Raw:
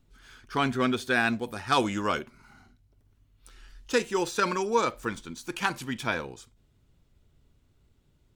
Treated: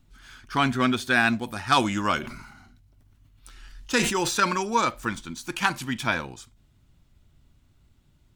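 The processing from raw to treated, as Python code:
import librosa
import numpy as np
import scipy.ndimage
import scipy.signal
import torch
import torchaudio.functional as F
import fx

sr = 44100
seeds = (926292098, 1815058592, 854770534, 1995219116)

y = fx.peak_eq(x, sr, hz=450.0, db=-10.0, octaves=0.51)
y = fx.sustainer(y, sr, db_per_s=51.0, at=(2.17, 4.38))
y = F.gain(torch.from_numpy(y), 4.5).numpy()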